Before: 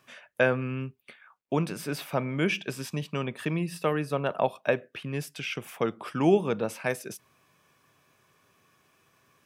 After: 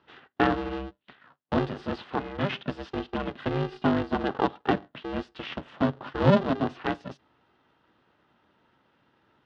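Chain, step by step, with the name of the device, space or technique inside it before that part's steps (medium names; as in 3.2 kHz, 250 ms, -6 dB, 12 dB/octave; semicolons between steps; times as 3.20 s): 2.04–2.65 s: peaking EQ 79 Hz -13 dB 2.6 oct; ring modulator pedal into a guitar cabinet (polarity switched at an audio rate 200 Hz; cabinet simulation 87–3600 Hz, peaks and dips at 140 Hz +9 dB, 250 Hz +9 dB, 2.3 kHz -10 dB)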